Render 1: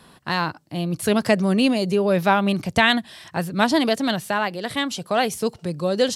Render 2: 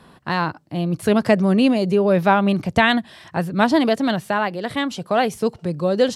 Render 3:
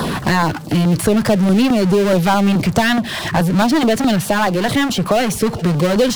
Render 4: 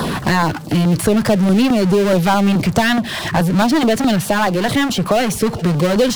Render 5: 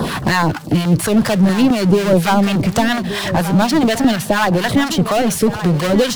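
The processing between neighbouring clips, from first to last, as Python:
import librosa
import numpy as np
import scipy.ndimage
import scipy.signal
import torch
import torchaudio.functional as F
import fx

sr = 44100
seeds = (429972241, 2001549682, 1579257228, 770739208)

y1 = fx.high_shelf(x, sr, hz=3000.0, db=-10.0)
y1 = y1 * librosa.db_to_amplitude(3.0)
y2 = fx.power_curve(y1, sr, exponent=0.5)
y2 = fx.filter_lfo_notch(y2, sr, shape='saw_down', hz=4.7, low_hz=260.0, high_hz=2700.0, q=1.4)
y2 = fx.band_squash(y2, sr, depth_pct=70)
y2 = y2 * librosa.db_to_amplitude(-2.5)
y3 = y2
y4 = fx.harmonic_tremolo(y3, sr, hz=4.2, depth_pct=70, crossover_hz=810.0)
y4 = y4 + 10.0 ** (-12.0 / 20.0) * np.pad(y4, (int(1175 * sr / 1000.0), 0))[:len(y4)]
y4 = y4 * librosa.db_to_amplitude(3.5)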